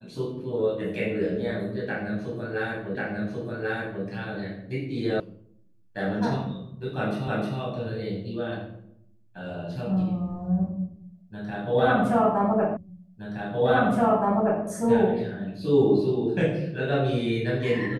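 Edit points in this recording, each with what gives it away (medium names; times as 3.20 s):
2.95 s: repeat of the last 1.09 s
5.20 s: sound stops dead
7.28 s: repeat of the last 0.31 s
12.77 s: repeat of the last 1.87 s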